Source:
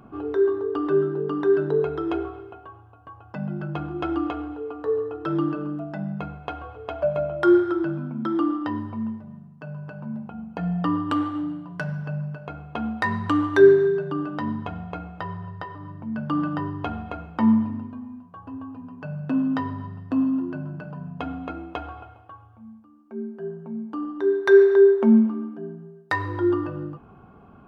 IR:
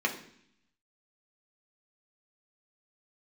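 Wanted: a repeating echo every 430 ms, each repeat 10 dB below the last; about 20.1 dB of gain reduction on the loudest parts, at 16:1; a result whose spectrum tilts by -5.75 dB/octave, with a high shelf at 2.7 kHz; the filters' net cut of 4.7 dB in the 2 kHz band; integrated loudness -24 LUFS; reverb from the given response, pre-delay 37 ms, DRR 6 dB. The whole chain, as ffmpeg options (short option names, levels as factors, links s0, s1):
-filter_complex "[0:a]equalizer=f=2000:t=o:g=-8,highshelf=f=2700:g=4,acompressor=threshold=0.0355:ratio=16,aecho=1:1:430|860|1290|1720:0.316|0.101|0.0324|0.0104,asplit=2[s0][s1];[1:a]atrim=start_sample=2205,adelay=37[s2];[s1][s2]afir=irnorm=-1:irlink=0,volume=0.168[s3];[s0][s3]amix=inputs=2:normalize=0,volume=2.82"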